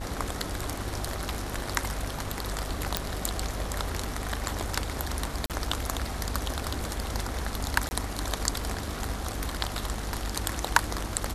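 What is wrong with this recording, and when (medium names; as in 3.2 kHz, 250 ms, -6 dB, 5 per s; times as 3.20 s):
buzz 50 Hz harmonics 32 -37 dBFS
2.97 s: pop -6 dBFS
5.46–5.50 s: dropout 38 ms
7.89–7.91 s: dropout 20 ms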